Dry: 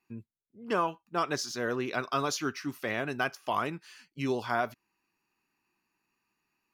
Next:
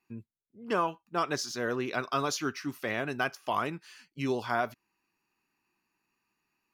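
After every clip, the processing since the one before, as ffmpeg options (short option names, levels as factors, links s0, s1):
-af anull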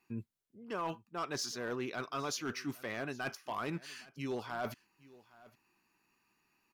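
-af "areverse,acompressor=threshold=0.0112:ratio=6,areverse,asoftclip=type=hard:threshold=0.02,aecho=1:1:814:0.0841,volume=1.58"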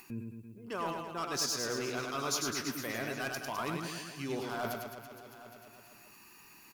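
-af "highshelf=f=6200:g=11.5,aecho=1:1:100|210|331|464.1|610.5:0.631|0.398|0.251|0.158|0.1,acompressor=mode=upward:threshold=0.00708:ratio=2.5"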